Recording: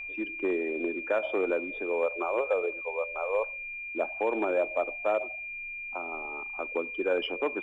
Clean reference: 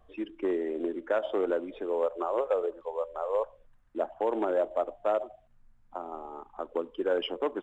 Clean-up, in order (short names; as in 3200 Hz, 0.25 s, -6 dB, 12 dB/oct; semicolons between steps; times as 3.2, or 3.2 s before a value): notch 2400 Hz, Q 30